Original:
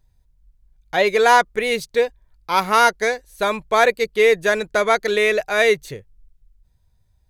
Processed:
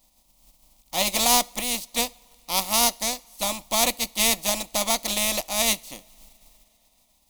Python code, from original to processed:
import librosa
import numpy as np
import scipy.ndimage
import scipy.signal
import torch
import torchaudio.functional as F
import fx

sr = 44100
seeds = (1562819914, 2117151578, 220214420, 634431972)

y = fx.spec_flatten(x, sr, power=0.4)
y = fx.fixed_phaser(y, sr, hz=420.0, stages=6)
y = fx.rev_double_slope(y, sr, seeds[0], early_s=0.4, late_s=4.2, knee_db=-20, drr_db=20.0)
y = y * 10.0 ** (-3.5 / 20.0)